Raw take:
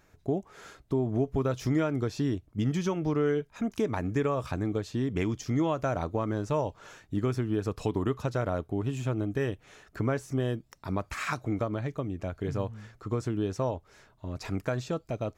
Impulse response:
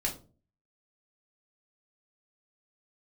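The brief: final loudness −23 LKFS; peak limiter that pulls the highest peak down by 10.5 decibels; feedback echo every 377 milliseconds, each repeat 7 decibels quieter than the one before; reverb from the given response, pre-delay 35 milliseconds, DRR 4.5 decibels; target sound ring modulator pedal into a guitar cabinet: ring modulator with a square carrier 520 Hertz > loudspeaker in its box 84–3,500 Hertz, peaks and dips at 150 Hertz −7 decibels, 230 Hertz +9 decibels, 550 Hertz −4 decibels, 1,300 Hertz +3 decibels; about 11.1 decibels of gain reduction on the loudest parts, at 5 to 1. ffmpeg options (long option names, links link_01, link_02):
-filter_complex "[0:a]acompressor=threshold=-36dB:ratio=5,alimiter=level_in=12dB:limit=-24dB:level=0:latency=1,volume=-12dB,aecho=1:1:377|754|1131|1508|1885:0.447|0.201|0.0905|0.0407|0.0183,asplit=2[link_01][link_02];[1:a]atrim=start_sample=2205,adelay=35[link_03];[link_02][link_03]afir=irnorm=-1:irlink=0,volume=-9dB[link_04];[link_01][link_04]amix=inputs=2:normalize=0,aeval=exprs='val(0)*sgn(sin(2*PI*520*n/s))':channel_layout=same,highpass=84,equalizer=frequency=150:width_type=q:width=4:gain=-7,equalizer=frequency=230:width_type=q:width=4:gain=9,equalizer=frequency=550:width_type=q:width=4:gain=-4,equalizer=frequency=1300:width_type=q:width=4:gain=3,lowpass=frequency=3500:width=0.5412,lowpass=frequency=3500:width=1.3066,volume=19dB"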